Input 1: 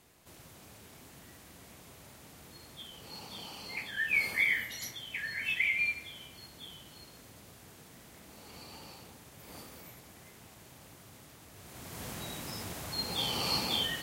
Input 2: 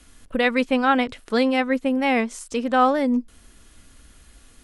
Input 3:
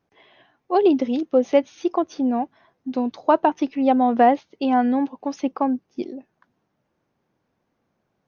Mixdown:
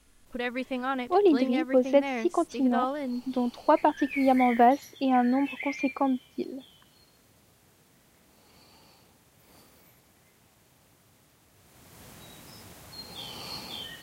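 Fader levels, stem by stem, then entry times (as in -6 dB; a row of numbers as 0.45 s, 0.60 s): -7.5 dB, -11.5 dB, -4.5 dB; 0.00 s, 0.00 s, 0.40 s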